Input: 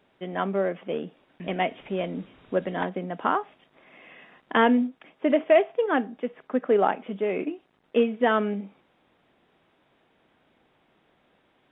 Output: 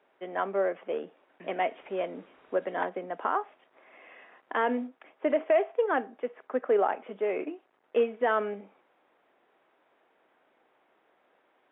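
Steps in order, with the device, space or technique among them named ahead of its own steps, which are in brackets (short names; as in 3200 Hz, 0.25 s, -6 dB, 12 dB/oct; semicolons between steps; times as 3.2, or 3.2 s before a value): DJ mixer with the lows and highs turned down (three-band isolator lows -22 dB, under 330 Hz, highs -13 dB, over 2400 Hz; limiter -16 dBFS, peak gain reduction 6.5 dB)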